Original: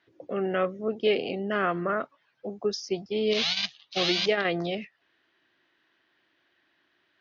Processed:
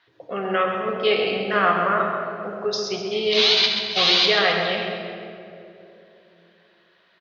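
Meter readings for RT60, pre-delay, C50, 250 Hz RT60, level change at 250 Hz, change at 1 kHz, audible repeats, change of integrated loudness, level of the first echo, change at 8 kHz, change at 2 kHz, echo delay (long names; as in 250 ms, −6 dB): 2.9 s, 4 ms, 2.0 dB, 3.6 s, +1.0 dB, +10.5 dB, 2, +7.5 dB, −8.0 dB, can't be measured, +9.0 dB, 132 ms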